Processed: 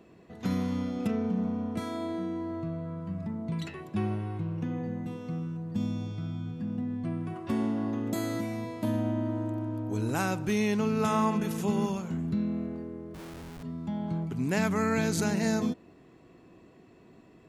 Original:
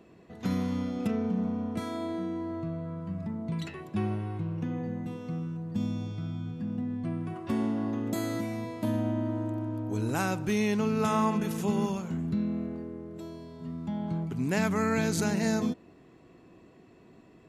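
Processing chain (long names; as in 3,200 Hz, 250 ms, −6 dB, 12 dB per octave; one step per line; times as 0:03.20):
0:13.14–0:13.63: comparator with hysteresis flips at −43.5 dBFS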